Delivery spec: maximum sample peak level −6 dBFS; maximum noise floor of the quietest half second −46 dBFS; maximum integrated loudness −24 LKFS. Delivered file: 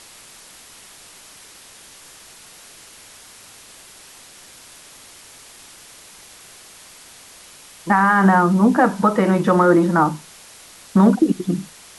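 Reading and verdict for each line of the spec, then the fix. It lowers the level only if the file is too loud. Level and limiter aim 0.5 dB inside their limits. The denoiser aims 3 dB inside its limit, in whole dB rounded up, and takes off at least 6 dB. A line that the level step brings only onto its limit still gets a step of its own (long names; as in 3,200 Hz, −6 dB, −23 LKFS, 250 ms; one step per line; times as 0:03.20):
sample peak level −4.5 dBFS: out of spec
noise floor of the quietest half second −44 dBFS: out of spec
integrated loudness −16.5 LKFS: out of spec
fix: level −8 dB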